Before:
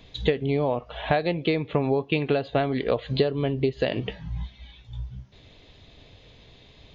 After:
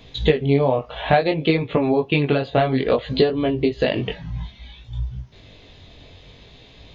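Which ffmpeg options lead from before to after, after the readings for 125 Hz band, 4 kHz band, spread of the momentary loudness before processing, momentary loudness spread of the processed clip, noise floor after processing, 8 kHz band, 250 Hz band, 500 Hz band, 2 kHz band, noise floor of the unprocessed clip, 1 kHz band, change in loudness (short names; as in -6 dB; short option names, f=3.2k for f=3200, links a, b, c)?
+5.0 dB, +5.5 dB, 14 LU, 14 LU, -47 dBFS, n/a, +6.0 dB, +5.5 dB, +5.5 dB, -53 dBFS, +6.5 dB, +5.5 dB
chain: -af "flanger=delay=17.5:depth=5.6:speed=0.58,volume=8.5dB"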